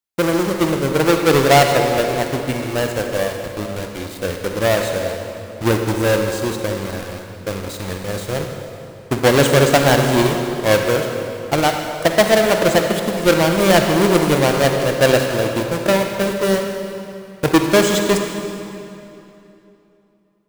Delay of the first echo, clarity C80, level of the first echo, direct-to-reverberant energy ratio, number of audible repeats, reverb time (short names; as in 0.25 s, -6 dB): none, 5.0 dB, none, 3.5 dB, none, 2.9 s